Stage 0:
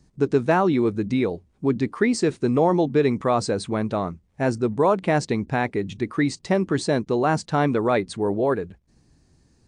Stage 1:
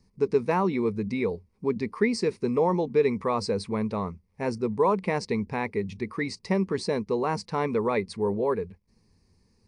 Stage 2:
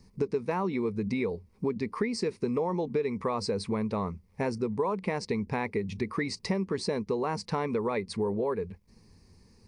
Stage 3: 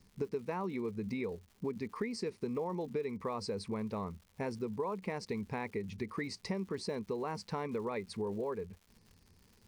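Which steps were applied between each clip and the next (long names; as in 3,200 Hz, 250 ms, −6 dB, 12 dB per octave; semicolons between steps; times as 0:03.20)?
EQ curve with evenly spaced ripples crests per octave 0.87, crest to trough 10 dB; level −6 dB
downward compressor 5 to 1, threshold −34 dBFS, peak gain reduction 15 dB; level +6.5 dB
surface crackle 220 per second −44 dBFS; level −7.5 dB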